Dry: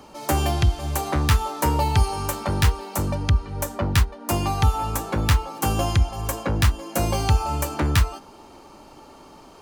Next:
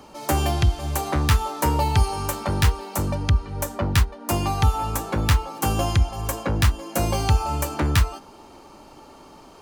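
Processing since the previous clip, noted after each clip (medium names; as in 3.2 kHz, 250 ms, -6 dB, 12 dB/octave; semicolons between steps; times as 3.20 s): no audible change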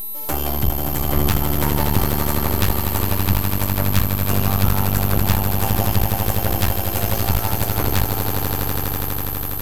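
echo with a slow build-up 82 ms, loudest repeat 8, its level -8.5 dB; whistle 12 kHz -23 dBFS; half-wave rectifier; trim +1 dB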